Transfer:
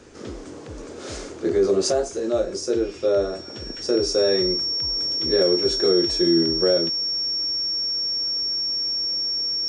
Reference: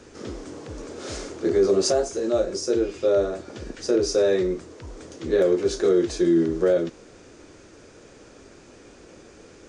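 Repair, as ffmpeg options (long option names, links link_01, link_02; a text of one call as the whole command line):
ffmpeg -i in.wav -af "bandreject=frequency=5500:width=30" out.wav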